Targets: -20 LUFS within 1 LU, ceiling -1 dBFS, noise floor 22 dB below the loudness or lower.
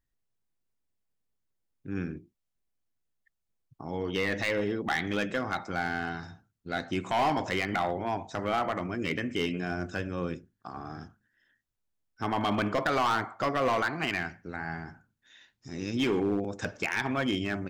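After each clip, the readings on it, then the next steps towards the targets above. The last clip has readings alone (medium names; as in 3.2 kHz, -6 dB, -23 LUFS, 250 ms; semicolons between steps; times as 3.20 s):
clipped samples 1.2%; clipping level -21.5 dBFS; loudness -31.0 LUFS; peak level -21.5 dBFS; loudness target -20.0 LUFS
-> clip repair -21.5 dBFS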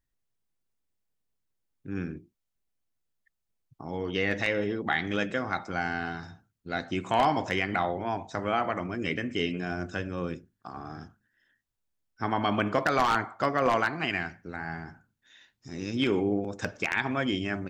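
clipped samples 0.0%; loudness -29.5 LUFS; peak level -12.5 dBFS; loudness target -20.0 LUFS
-> trim +9.5 dB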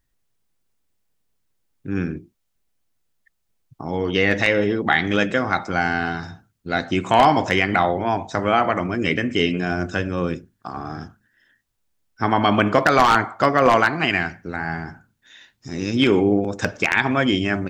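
loudness -20.0 LUFS; peak level -3.0 dBFS; noise floor -72 dBFS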